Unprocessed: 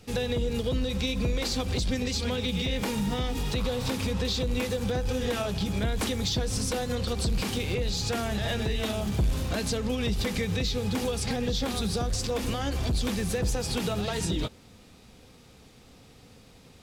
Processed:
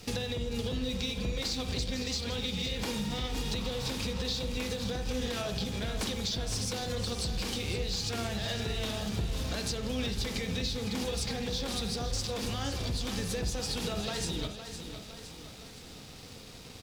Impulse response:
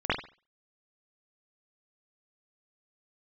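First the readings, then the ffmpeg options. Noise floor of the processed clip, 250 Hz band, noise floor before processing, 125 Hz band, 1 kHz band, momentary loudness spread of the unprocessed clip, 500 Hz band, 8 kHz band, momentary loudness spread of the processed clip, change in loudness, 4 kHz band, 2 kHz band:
-48 dBFS, -5.5 dB, -54 dBFS, -5.5 dB, -5.0 dB, 1 LU, -6.0 dB, -2.5 dB, 10 LU, -4.5 dB, -1.0 dB, -4.0 dB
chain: -filter_complex "[0:a]equalizer=f=4800:w=0.93:g=7,acompressor=threshold=0.0126:ratio=6,aeval=exprs='sgn(val(0))*max(abs(val(0))-0.00126,0)':c=same,aecho=1:1:512|1024|1536|2048|2560|3072:0.316|0.161|0.0823|0.0419|0.0214|0.0109,asplit=2[s0][s1];[1:a]atrim=start_sample=2205[s2];[s1][s2]afir=irnorm=-1:irlink=0,volume=0.106[s3];[s0][s3]amix=inputs=2:normalize=0,volume=1.88"

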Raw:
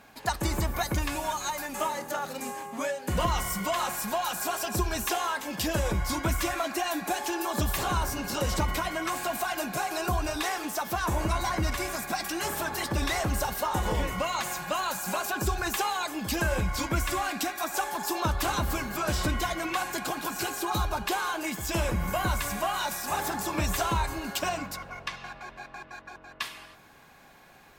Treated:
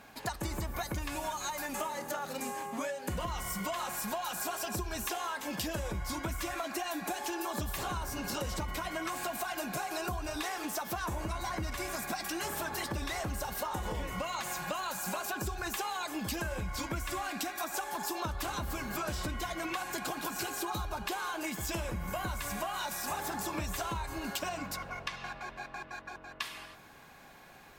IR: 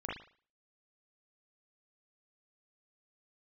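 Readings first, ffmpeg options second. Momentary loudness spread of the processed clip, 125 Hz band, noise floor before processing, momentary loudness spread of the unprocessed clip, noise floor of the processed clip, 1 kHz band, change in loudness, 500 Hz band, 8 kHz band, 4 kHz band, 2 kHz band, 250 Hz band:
4 LU, -8.0 dB, -53 dBFS, 5 LU, -53 dBFS, -6.5 dB, -6.5 dB, -6.5 dB, -5.5 dB, -6.0 dB, -6.0 dB, -6.0 dB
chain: -af "acompressor=threshold=0.0224:ratio=6"

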